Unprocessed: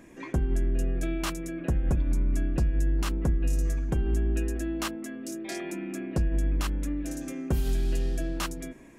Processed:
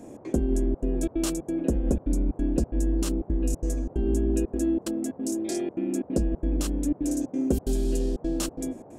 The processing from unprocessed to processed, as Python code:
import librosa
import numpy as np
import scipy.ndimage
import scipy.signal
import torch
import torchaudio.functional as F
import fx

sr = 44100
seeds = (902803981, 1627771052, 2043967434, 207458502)

y = fx.graphic_eq(x, sr, hz=(125, 250, 500, 1000, 2000, 8000), db=(-9, 10, 8, -8, -8, 8))
y = fx.step_gate(y, sr, bpm=182, pattern='xx.xxxxxx.xxx.x', floor_db=-60.0, edge_ms=4.5)
y = fx.dmg_noise_band(y, sr, seeds[0], low_hz=84.0, high_hz=710.0, level_db=-48.0)